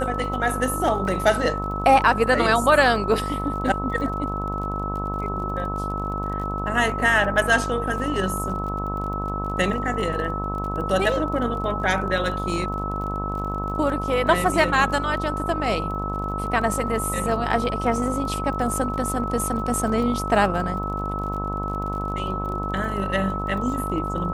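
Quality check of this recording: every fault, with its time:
mains buzz 50 Hz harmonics 25 −29 dBFS
surface crackle 31 per second −32 dBFS
whistle 1,300 Hz −28 dBFS

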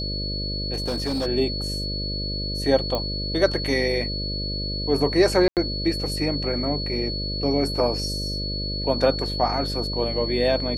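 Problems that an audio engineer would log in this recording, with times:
mains buzz 50 Hz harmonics 12 −30 dBFS
whistle 4,400 Hz −29 dBFS
0:00.73–0:01.27: clipping −21.5 dBFS
0:02.95: click −13 dBFS
0:05.48–0:05.57: drop-out 88 ms

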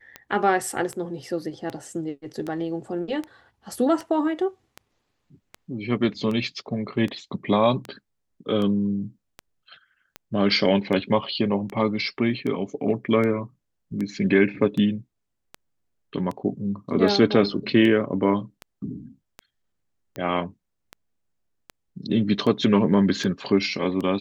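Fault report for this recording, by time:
scratch tick 78 rpm −19 dBFS

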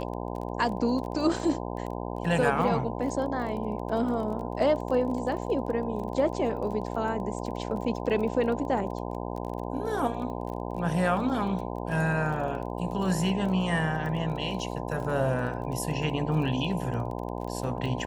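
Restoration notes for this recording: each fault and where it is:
mains buzz 60 Hz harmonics 17 −34 dBFS
surface crackle 23 per second −35 dBFS

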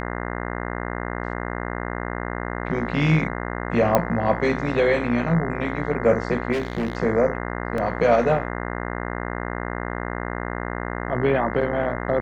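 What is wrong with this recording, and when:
mains buzz 60 Hz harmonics 35 −29 dBFS
0:03.95: click −4 dBFS
0:06.52–0:06.97: clipping −20.5 dBFS
0:07.78: drop-out 2.3 ms

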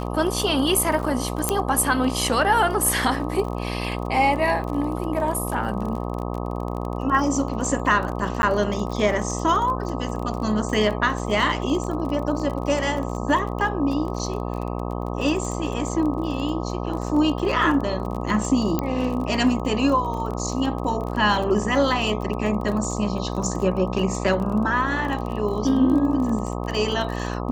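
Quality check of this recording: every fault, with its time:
mains buzz 60 Hz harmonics 21 −28 dBFS
surface crackle 28 per second −29 dBFS
0:01.49: click −5 dBFS
0:08.42–0:08.43: drop-out
0:18.79: click −10 dBFS

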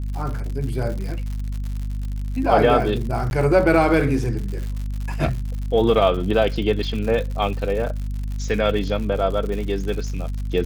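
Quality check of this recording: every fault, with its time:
surface crackle 120 per second −29 dBFS
mains hum 50 Hz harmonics 5 −26 dBFS
0:03.30–0:03.31: drop-out 11 ms

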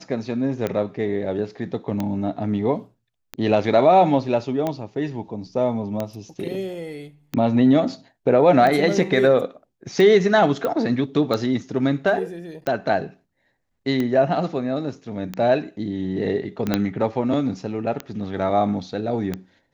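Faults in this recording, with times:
scratch tick 45 rpm −12 dBFS
0:10.65: click −13 dBFS
0:16.74: click −6 dBFS

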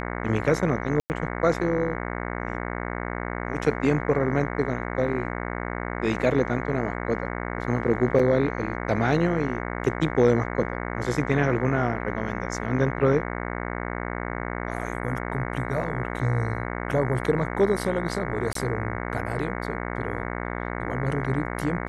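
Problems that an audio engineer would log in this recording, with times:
mains buzz 60 Hz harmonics 37 −31 dBFS
0:01.00–0:01.10: drop-out 99 ms
0:08.19–0:08.20: drop-out 5 ms
0:18.53–0:18.55: drop-out 23 ms

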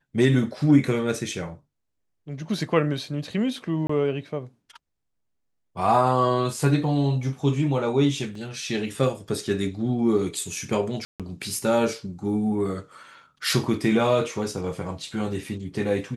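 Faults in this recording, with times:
0:03.87–0:03.89: drop-out 24 ms
0:08.35: drop-out 3.6 ms
0:11.05–0:11.20: drop-out 147 ms

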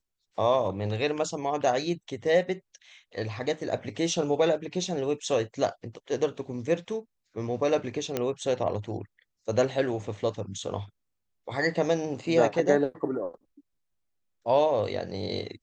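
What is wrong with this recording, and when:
0:08.17: click −13 dBFS

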